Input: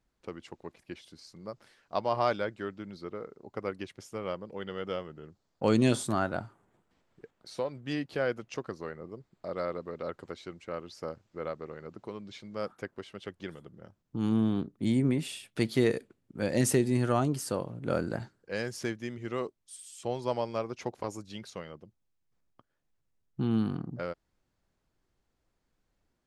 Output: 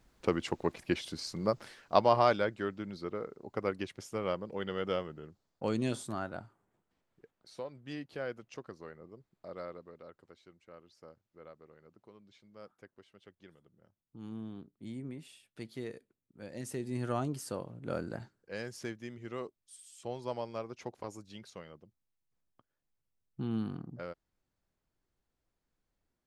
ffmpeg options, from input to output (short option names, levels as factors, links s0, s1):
-af "volume=11.2,afade=t=out:st=1.43:d=0.81:silence=0.316228,afade=t=out:st=5.01:d=0.72:silence=0.316228,afade=t=out:st=9.55:d=0.56:silence=0.421697,afade=t=in:st=16.69:d=0.42:silence=0.334965"